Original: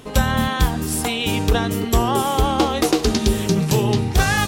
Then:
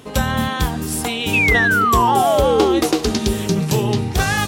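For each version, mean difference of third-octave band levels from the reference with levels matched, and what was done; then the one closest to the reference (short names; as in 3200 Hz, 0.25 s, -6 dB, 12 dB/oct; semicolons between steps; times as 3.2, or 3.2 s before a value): 2.5 dB: HPF 61 Hz; painted sound fall, 1.33–2.8, 320–2700 Hz -16 dBFS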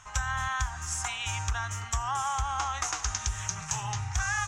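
10.0 dB: EQ curve 100 Hz 0 dB, 210 Hz -26 dB, 450 Hz -27 dB, 830 Hz +1 dB, 1400 Hz +7 dB, 4400 Hz -8 dB, 6500 Hz +12 dB, 12000 Hz -19 dB; compressor, threshold -18 dBFS, peak gain reduction 7.5 dB; gain -8 dB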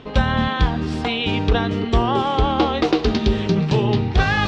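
6.0 dB: LPF 4200 Hz 24 dB/oct; reverse; upward compressor, threshold -18 dBFS; reverse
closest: first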